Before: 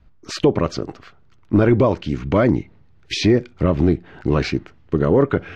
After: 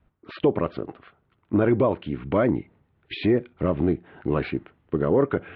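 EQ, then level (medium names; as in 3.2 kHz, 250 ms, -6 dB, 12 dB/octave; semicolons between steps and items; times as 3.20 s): high-pass 640 Hz 6 dB/octave; steep low-pass 3.8 kHz 48 dB/octave; tilt EQ -3 dB/octave; -3.0 dB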